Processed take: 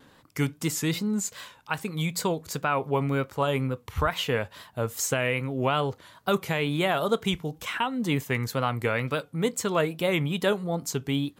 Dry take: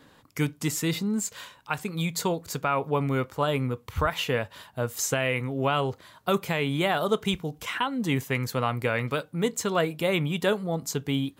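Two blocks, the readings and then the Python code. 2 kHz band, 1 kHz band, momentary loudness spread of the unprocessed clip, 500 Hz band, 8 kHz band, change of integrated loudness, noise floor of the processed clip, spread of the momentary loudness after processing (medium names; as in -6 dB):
0.0 dB, 0.0 dB, 6 LU, 0.0 dB, 0.0 dB, 0.0 dB, -58 dBFS, 6 LU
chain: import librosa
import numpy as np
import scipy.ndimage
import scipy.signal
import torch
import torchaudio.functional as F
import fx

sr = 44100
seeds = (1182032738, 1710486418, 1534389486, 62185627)

y = fx.wow_flutter(x, sr, seeds[0], rate_hz=2.1, depth_cents=83.0)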